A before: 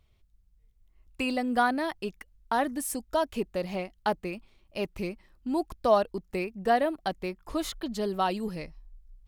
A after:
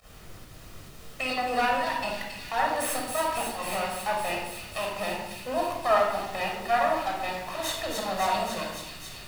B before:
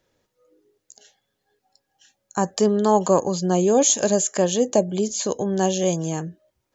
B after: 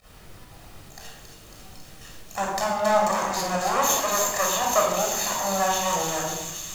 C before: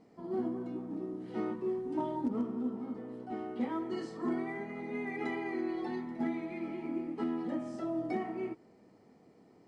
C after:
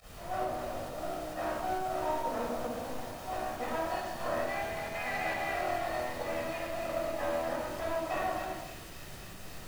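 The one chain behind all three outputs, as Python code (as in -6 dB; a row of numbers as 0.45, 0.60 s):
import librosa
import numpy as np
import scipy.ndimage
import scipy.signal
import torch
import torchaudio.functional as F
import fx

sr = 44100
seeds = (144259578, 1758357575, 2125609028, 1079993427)

p1 = fx.lower_of_two(x, sr, delay_ms=1.1)
p2 = scipy.signal.sosfilt(scipy.signal.butter(2, 650.0, 'highpass', fs=sr, output='sos'), p1)
p3 = fx.high_shelf(p2, sr, hz=2000.0, db=-7.0)
p4 = fx.over_compress(p3, sr, threshold_db=-43.0, ratio=-1.0)
p5 = p3 + (p4 * 10.0 ** (-1.5 / 20.0))
p6 = fx.dmg_noise_colour(p5, sr, seeds[0], colour='pink', level_db=-54.0)
p7 = fx.volume_shaper(p6, sr, bpm=135, per_beat=1, depth_db=-19, release_ms=87.0, shape='fast start')
p8 = p7 + fx.echo_wet_highpass(p7, sr, ms=274, feedback_pct=83, hz=3400.0, wet_db=-4.5, dry=0)
y = fx.room_shoebox(p8, sr, seeds[1], volume_m3=3000.0, walls='furnished', distance_m=6.3)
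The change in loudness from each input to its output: +1.5, -2.5, +2.0 LU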